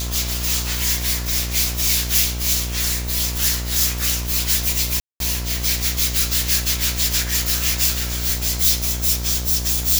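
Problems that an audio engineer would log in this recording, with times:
buzz 60 Hz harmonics 39 -26 dBFS
5–5.2 gap 0.202 s

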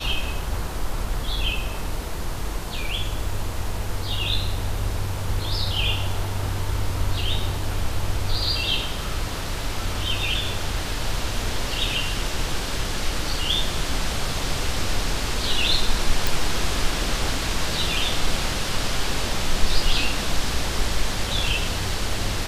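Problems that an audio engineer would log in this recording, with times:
16.27 pop

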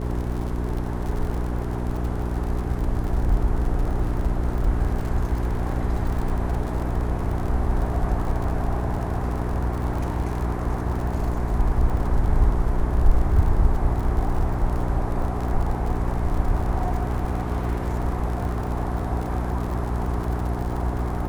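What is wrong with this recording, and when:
crackle 66/s -30 dBFS
hum 60 Hz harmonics 7 -27 dBFS

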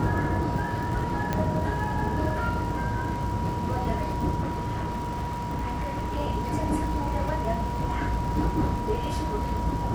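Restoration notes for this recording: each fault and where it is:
crackle 110/s -34 dBFS
tone 960 Hz -32 dBFS
1.33 pop -13 dBFS
4.41–6.19 clipped -25.5 dBFS

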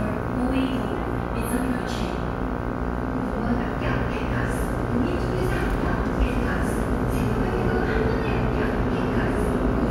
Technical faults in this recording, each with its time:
buzz 60 Hz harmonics 26 -29 dBFS

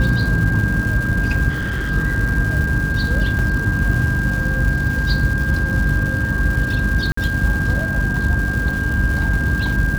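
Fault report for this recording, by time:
crackle 480/s -26 dBFS
hum 50 Hz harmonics 6 -24 dBFS
tone 1600 Hz -22 dBFS
1.49–1.91 clipped -18.5 dBFS
3.39 gap 3.2 ms
7.12–7.17 gap 54 ms

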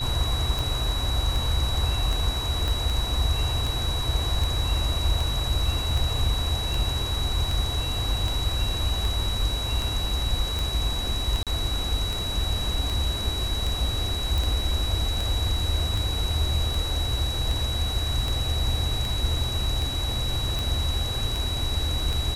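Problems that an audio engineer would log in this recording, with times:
tick 78 rpm
tone 3900 Hz -30 dBFS
2.68 pop
11.43–11.47 gap 37 ms
14.38 pop

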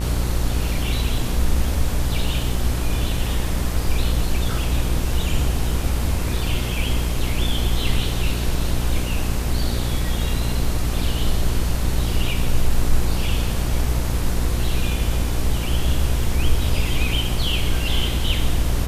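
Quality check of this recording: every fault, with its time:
buzz 60 Hz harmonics 32 -24 dBFS

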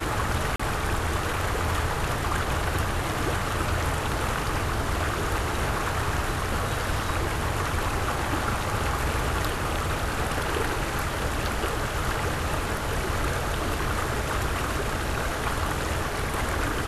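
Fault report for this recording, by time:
0.56–0.59 gap 35 ms

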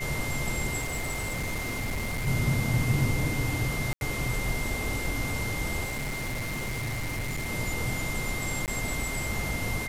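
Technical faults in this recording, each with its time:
tone 2100 Hz -34 dBFS
0.8–2.28 clipped -27 dBFS
3.93–4.01 gap 81 ms
5.84–7.5 clipped -28.5 dBFS
8.66–8.68 gap 18 ms

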